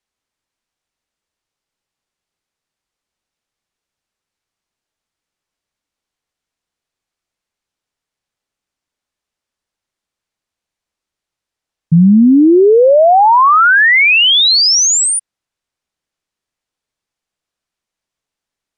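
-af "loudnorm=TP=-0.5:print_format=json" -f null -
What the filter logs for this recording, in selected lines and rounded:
"input_i" : "-7.5",
"input_tp" : "-3.1",
"input_lra" : "15.2",
"input_thresh" : "-17.6",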